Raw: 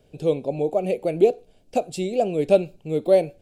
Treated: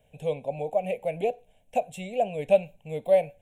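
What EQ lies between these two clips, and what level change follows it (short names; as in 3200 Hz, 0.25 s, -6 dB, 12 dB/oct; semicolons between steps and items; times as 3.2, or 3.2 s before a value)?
dynamic EQ 9200 Hz, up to -5 dB, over -50 dBFS, Q 0.97; low shelf 300 Hz -5.5 dB; fixed phaser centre 1300 Hz, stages 6; 0.0 dB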